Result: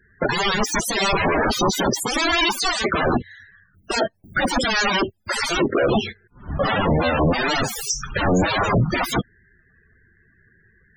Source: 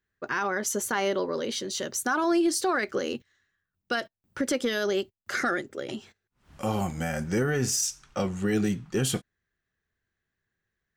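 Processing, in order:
sine wavefolder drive 19 dB, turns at −17 dBFS
spectral peaks only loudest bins 32
level +4 dB

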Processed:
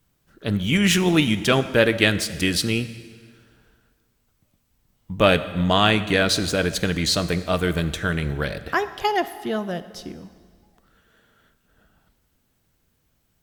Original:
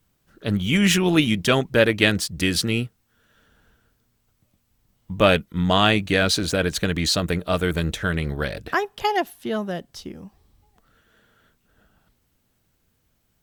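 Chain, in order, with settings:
dense smooth reverb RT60 1.8 s, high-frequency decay 0.85×, DRR 12 dB

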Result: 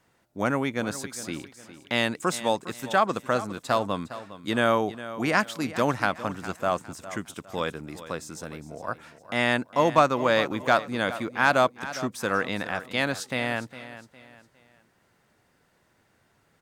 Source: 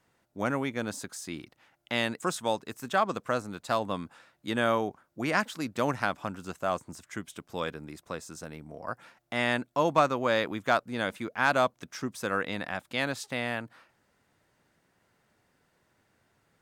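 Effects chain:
repeating echo 408 ms, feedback 35%, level −14.5 dB
level +4 dB

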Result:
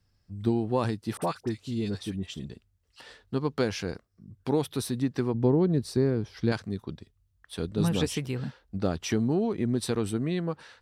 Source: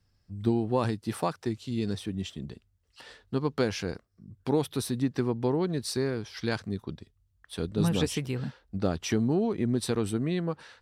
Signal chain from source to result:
0:01.17–0:02.50: all-pass dispersion highs, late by 48 ms, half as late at 1,300 Hz
0:05.34–0:06.52: tilt shelving filter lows +7 dB, about 720 Hz

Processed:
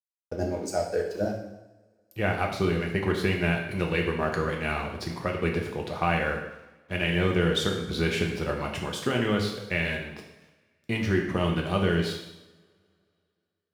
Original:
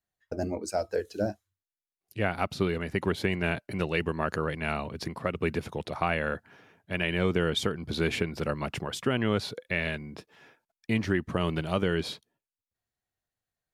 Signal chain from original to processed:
dead-zone distortion −52 dBFS
coupled-rooms reverb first 0.86 s, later 2.7 s, from −26 dB, DRR 0.5 dB

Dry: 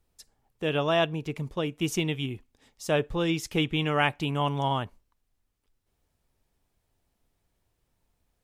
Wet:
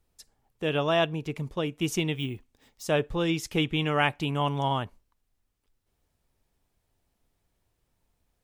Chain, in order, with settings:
0:02.16–0:02.83: bad sample-rate conversion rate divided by 2×, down none, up hold

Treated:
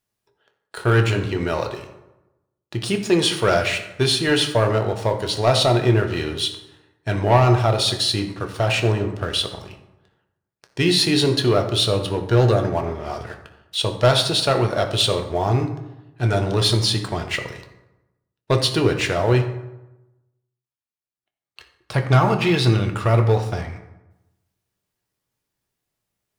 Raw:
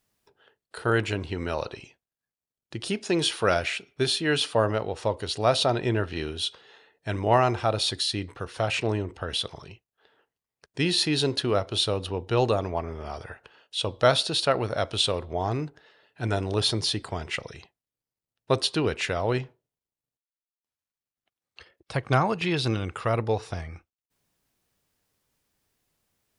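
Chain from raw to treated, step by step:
0:12.18–0:12.75: thirty-one-band graphic EQ 1,000 Hz −9 dB, 1,600 Hz +8 dB, 2,500 Hz −9 dB
leveller curve on the samples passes 2
convolution reverb RT60 1.0 s, pre-delay 4 ms, DRR 4 dB
level −2 dB

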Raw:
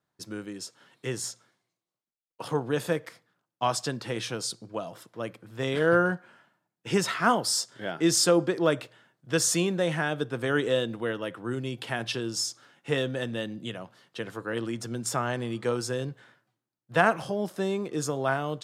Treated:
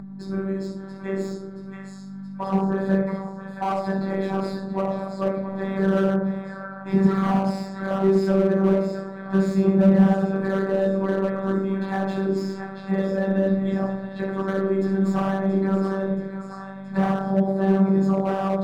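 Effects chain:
downward compressor 3 to 1, threshold −32 dBFS, peak gain reduction 12.5 dB
mains hum 50 Hz, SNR 19 dB
high-pass filter 150 Hz 12 dB per octave
low-shelf EQ 280 Hz +5 dB
echo with a time of its own for lows and highs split 700 Hz, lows 120 ms, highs 676 ms, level −10 dB
rectangular room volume 860 cubic metres, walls furnished, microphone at 8.7 metres
upward compression, threshold −29 dBFS
parametric band 360 Hz −4.5 dB 0.82 octaves
phases set to zero 193 Hz
moving average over 15 samples
slew-rate limiting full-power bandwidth 49 Hz
level +4 dB

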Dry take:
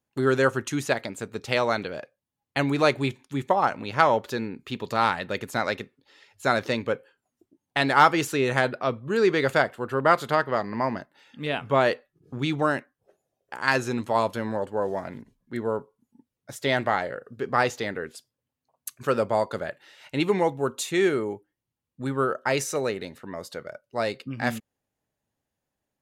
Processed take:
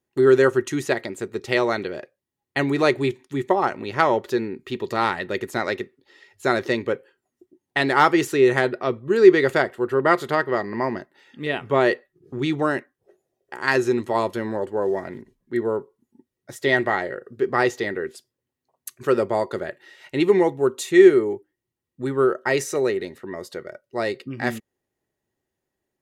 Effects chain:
hollow resonant body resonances 370/1,900 Hz, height 13 dB, ringing for 55 ms

